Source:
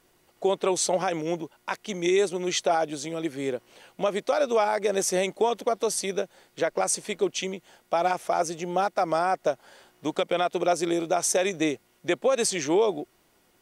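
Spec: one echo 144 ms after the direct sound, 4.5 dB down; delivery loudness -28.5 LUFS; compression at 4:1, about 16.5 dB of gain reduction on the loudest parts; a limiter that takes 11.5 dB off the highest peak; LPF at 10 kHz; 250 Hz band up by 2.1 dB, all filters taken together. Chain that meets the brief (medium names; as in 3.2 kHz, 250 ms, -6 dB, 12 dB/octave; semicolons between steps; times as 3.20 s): low-pass 10 kHz; peaking EQ 250 Hz +3.5 dB; compression 4:1, threshold -39 dBFS; peak limiter -33 dBFS; delay 144 ms -4.5 dB; trim +13.5 dB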